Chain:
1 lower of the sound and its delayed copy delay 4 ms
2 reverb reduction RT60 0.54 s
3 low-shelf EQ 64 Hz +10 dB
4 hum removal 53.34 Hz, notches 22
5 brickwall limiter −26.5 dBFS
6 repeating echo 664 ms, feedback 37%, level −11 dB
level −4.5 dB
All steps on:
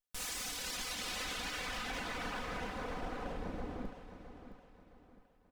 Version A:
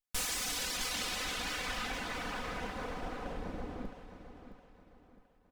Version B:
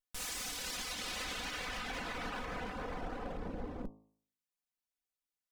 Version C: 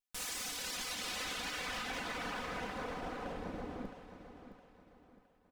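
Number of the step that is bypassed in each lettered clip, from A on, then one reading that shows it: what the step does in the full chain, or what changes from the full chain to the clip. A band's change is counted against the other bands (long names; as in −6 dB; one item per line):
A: 5, average gain reduction 2.0 dB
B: 6, change in crest factor −1.5 dB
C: 3, 125 Hz band −2.5 dB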